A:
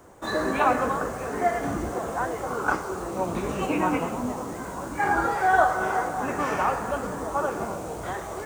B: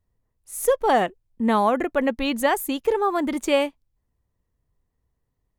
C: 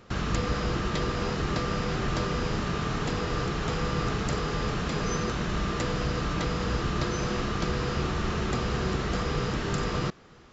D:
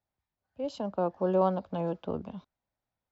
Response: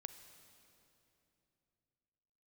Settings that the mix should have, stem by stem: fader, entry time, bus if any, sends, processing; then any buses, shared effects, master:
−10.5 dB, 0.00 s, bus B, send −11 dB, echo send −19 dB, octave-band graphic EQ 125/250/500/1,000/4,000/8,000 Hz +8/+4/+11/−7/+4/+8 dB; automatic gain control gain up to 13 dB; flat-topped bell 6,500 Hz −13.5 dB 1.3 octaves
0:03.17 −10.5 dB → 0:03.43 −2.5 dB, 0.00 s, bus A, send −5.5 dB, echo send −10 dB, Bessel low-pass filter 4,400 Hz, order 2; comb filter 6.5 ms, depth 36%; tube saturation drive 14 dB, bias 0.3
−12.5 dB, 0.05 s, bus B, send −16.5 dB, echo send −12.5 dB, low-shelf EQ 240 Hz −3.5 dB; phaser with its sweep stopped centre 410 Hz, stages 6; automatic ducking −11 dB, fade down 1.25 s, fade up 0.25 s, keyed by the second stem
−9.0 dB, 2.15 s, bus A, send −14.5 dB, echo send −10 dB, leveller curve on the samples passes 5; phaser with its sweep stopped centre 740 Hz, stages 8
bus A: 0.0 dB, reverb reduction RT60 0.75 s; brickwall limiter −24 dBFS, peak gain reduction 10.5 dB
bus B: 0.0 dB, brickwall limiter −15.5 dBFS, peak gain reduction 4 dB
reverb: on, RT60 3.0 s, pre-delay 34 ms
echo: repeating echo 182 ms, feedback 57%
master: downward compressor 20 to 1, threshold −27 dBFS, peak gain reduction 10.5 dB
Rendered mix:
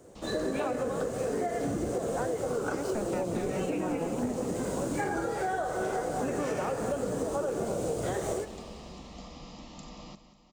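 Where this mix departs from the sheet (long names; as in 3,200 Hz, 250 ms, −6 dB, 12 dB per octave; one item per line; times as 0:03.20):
stem A: missing flat-topped bell 6,500 Hz −13.5 dB 1.3 octaves
stem B: muted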